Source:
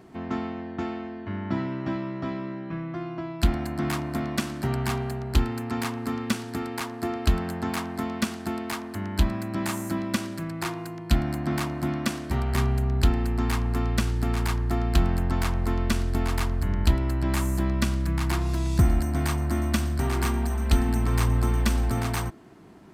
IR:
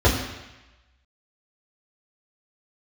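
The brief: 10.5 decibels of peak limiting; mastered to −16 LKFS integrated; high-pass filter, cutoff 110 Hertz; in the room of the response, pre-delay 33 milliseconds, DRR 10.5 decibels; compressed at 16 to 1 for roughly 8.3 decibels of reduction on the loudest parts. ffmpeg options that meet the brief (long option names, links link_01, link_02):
-filter_complex "[0:a]highpass=110,acompressor=threshold=-28dB:ratio=16,alimiter=level_in=2dB:limit=-24dB:level=0:latency=1,volume=-2dB,asplit=2[link_01][link_02];[1:a]atrim=start_sample=2205,adelay=33[link_03];[link_02][link_03]afir=irnorm=-1:irlink=0,volume=-30.5dB[link_04];[link_01][link_04]amix=inputs=2:normalize=0,volume=18dB"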